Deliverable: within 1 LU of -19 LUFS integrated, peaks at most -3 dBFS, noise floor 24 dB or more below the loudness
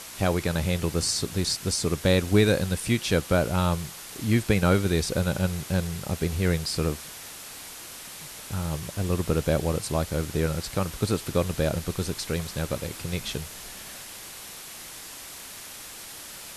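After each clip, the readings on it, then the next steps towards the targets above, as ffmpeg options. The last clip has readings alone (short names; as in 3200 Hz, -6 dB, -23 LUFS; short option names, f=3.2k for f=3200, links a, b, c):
noise floor -42 dBFS; noise floor target -51 dBFS; loudness -26.5 LUFS; peak -7.5 dBFS; loudness target -19.0 LUFS
-> -af "afftdn=nr=9:nf=-42"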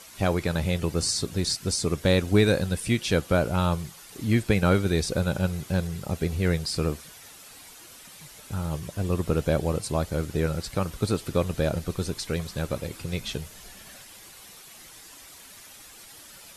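noise floor -48 dBFS; noise floor target -51 dBFS
-> -af "afftdn=nr=6:nf=-48"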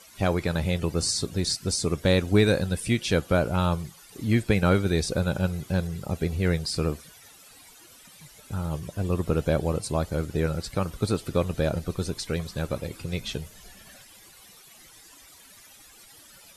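noise floor -52 dBFS; loudness -26.5 LUFS; peak -8.0 dBFS; loudness target -19.0 LUFS
-> -af "volume=7.5dB,alimiter=limit=-3dB:level=0:latency=1"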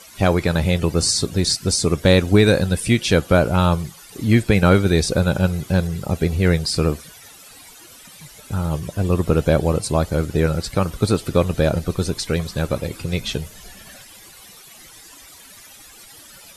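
loudness -19.5 LUFS; peak -3.0 dBFS; noise floor -44 dBFS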